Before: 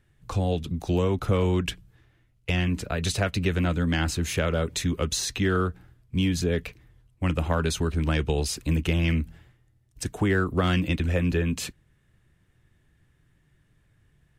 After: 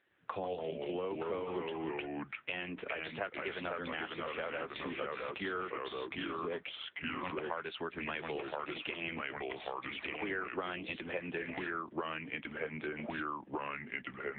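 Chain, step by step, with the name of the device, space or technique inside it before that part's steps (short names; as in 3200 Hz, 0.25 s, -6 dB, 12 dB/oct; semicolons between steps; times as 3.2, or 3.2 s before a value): 7.3–9.03 tilt shelf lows -3.5 dB, about 1400 Hz; echoes that change speed 0.106 s, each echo -2 st, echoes 2; voicemail (BPF 440–3200 Hz; compressor 6:1, threshold -37 dBFS, peak gain reduction 14 dB; gain +3 dB; AMR-NB 6.7 kbps 8000 Hz)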